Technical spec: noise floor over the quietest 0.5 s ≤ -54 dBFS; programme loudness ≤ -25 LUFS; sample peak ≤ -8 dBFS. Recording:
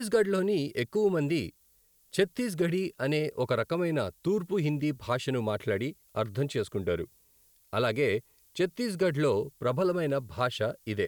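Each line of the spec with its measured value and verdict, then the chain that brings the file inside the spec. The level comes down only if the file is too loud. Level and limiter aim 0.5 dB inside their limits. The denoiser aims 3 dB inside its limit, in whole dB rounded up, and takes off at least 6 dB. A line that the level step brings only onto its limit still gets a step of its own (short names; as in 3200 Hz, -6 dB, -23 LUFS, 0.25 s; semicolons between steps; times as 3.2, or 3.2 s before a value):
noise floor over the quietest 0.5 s -65 dBFS: OK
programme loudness -30.0 LUFS: OK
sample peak -13.5 dBFS: OK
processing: none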